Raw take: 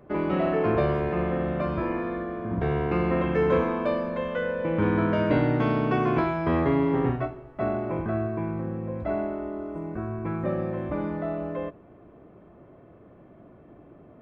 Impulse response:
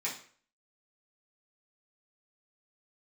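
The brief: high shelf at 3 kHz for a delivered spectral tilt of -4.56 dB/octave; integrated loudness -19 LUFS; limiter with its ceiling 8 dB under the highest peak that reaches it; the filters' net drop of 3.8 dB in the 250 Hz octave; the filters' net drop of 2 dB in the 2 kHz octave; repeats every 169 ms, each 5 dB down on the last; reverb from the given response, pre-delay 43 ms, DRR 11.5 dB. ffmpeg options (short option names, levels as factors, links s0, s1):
-filter_complex "[0:a]equalizer=f=250:t=o:g=-5.5,equalizer=f=2000:t=o:g=-4,highshelf=f=3000:g=4,alimiter=limit=0.106:level=0:latency=1,aecho=1:1:169|338|507|676|845|1014|1183:0.562|0.315|0.176|0.0988|0.0553|0.031|0.0173,asplit=2[s0][s1];[1:a]atrim=start_sample=2205,adelay=43[s2];[s1][s2]afir=irnorm=-1:irlink=0,volume=0.158[s3];[s0][s3]amix=inputs=2:normalize=0,volume=2.99"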